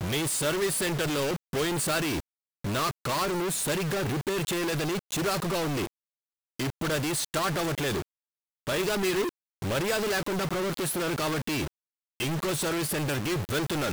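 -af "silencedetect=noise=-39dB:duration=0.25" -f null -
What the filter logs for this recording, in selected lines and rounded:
silence_start: 2.20
silence_end: 2.64 | silence_duration: 0.44
silence_start: 5.87
silence_end: 6.59 | silence_duration: 0.72
silence_start: 8.02
silence_end: 8.67 | silence_duration: 0.65
silence_start: 9.29
silence_end: 9.62 | silence_duration: 0.33
silence_start: 11.68
silence_end: 12.20 | silence_duration: 0.52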